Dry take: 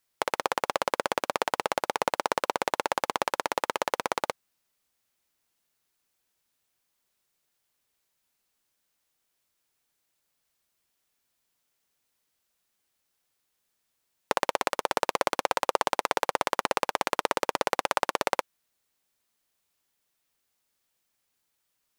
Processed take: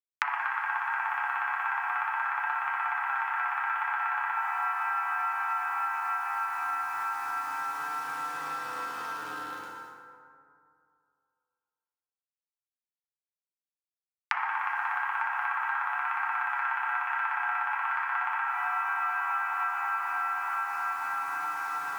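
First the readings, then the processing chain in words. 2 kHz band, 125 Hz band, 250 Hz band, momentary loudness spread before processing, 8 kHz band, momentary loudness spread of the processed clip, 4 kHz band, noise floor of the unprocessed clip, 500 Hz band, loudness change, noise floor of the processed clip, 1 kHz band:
+6.5 dB, under -10 dB, -15.0 dB, 3 LU, -13.5 dB, 5 LU, -13.0 dB, -78 dBFS, -20.0 dB, -1.5 dB, under -85 dBFS, +2.0 dB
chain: tilt shelf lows +3.5 dB, about 1200 Hz; swelling echo 0.107 s, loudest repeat 8, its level -17.5 dB; mistuned SSB +350 Hz 450–2200 Hz; requantised 10-bit, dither none; compressor, threshold -27 dBFS, peak gain reduction 9.5 dB; FDN reverb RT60 2.4 s, low-frequency decay 0.9×, high-frequency decay 0.4×, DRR -7 dB; flange 0.37 Hz, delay 6.3 ms, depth 3.4 ms, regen +53%; three-band squash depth 100%

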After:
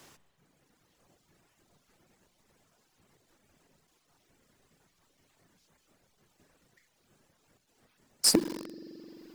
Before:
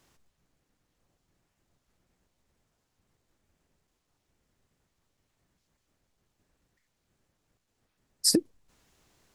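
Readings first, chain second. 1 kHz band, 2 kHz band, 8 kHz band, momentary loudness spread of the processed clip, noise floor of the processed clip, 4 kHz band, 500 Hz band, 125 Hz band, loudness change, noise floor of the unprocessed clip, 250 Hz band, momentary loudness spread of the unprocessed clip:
+15.0 dB, +8.0 dB, +0.5 dB, 19 LU, -73 dBFS, +0.5 dB, +1.0 dB, +1.0 dB, -1.5 dB, -79 dBFS, 0.0 dB, 3 LU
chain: reverb removal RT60 1.6 s; notches 60/120/180/240/300 Hz; spring tank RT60 2.4 s, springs 43 ms, chirp 75 ms, DRR 12.5 dB; in parallel at -10 dB: companded quantiser 2-bit; on the sum: overloaded stage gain 6 dB; three-band squash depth 40%

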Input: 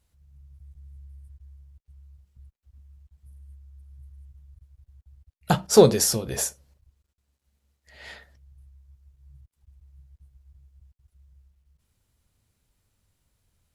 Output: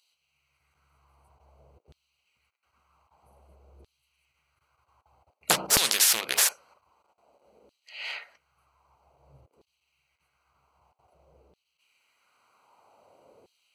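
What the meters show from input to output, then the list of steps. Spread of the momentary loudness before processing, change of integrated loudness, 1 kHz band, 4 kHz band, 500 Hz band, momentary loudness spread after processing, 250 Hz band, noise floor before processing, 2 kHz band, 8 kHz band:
12 LU, -3.0 dB, -3.5 dB, +5.5 dB, -17.0 dB, 17 LU, -16.0 dB, -80 dBFS, +8.0 dB, +3.0 dB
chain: Wiener smoothing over 25 samples; LFO high-pass saw down 0.52 Hz 410–3800 Hz; spectral compressor 4:1; gain -1.5 dB

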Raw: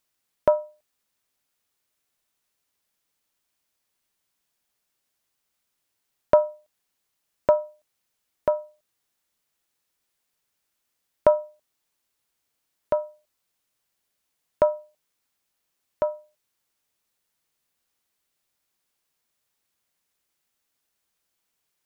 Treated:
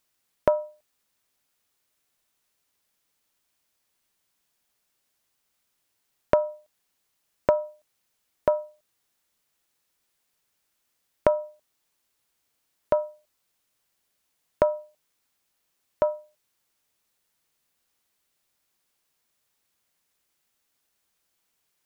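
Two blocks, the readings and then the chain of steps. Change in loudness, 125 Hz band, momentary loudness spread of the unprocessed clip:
-2.0 dB, +2.5 dB, 12 LU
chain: compressor, threshold -19 dBFS, peak gain reduction 8 dB; gain +2.5 dB

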